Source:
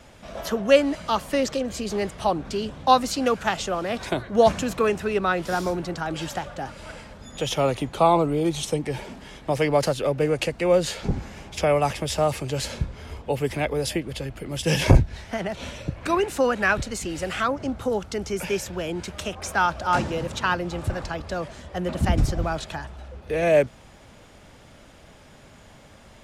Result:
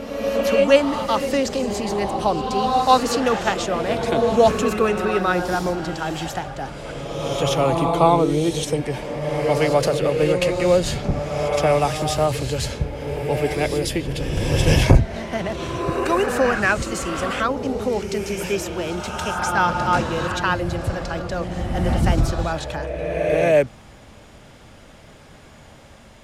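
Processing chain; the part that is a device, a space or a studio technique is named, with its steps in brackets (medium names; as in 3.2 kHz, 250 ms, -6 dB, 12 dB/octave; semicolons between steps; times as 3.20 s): reverse reverb (reverse; reverberation RT60 2.3 s, pre-delay 107 ms, DRR 3.5 dB; reverse); trim +2 dB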